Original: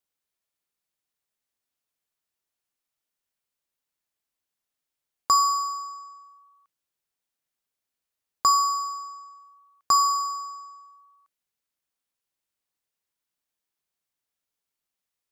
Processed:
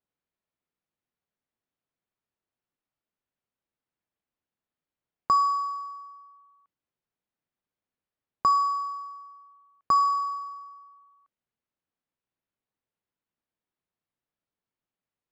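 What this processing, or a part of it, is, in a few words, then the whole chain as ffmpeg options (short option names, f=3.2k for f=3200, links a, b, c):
phone in a pocket: -filter_complex "[0:a]asplit=3[a][b][c];[a]afade=t=out:st=9.94:d=0.02[d];[b]lowshelf=f=290:g=9,afade=t=in:st=9.94:d=0.02,afade=t=out:st=10.36:d=0.02[e];[c]afade=t=in:st=10.36:d=0.02[f];[d][e][f]amix=inputs=3:normalize=0,lowpass=3.8k,equalizer=f=170:t=o:w=2.5:g=5.5,highshelf=f=2.4k:g=-9"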